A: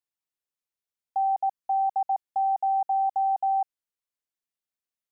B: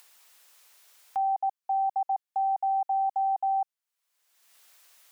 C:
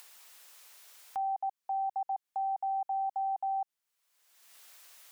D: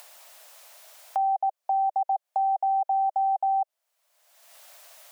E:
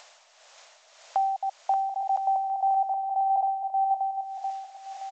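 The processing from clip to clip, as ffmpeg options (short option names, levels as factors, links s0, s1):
-af "highpass=680,acompressor=mode=upward:threshold=0.0251:ratio=2.5"
-af "alimiter=level_in=2.37:limit=0.0631:level=0:latency=1:release=104,volume=0.422,volume=1.41"
-af "acompressor=threshold=0.00794:ratio=1.5,highpass=f=620:t=q:w=4.7,volume=1.68"
-af "aecho=1:1:580|1015|1341|1586|1769:0.631|0.398|0.251|0.158|0.1,tremolo=f=1.8:d=0.56,volume=1.19" -ar 16000 -c:a g722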